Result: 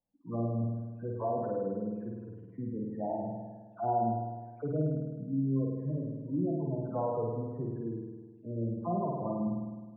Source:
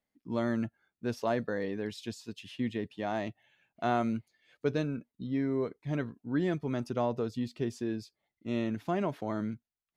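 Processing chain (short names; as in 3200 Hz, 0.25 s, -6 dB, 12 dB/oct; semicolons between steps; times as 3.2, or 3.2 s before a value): spectral delay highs early, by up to 0.27 s; inverse Chebyshev low-pass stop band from 4900 Hz, stop band 70 dB; spectral gate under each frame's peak -15 dB strong; bell 360 Hz -6 dB 0.87 oct; flutter echo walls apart 8.9 m, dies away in 1.4 s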